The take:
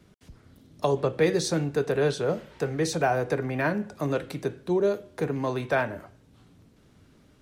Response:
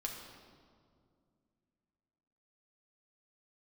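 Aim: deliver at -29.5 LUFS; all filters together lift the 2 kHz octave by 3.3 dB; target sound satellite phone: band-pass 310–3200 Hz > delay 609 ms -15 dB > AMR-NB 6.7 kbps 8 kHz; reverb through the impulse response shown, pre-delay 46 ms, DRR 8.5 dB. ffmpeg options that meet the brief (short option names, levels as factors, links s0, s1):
-filter_complex "[0:a]equalizer=f=2000:t=o:g=5,asplit=2[s0][s1];[1:a]atrim=start_sample=2205,adelay=46[s2];[s1][s2]afir=irnorm=-1:irlink=0,volume=0.376[s3];[s0][s3]amix=inputs=2:normalize=0,highpass=310,lowpass=3200,aecho=1:1:609:0.178,volume=0.944" -ar 8000 -c:a libopencore_amrnb -b:a 6700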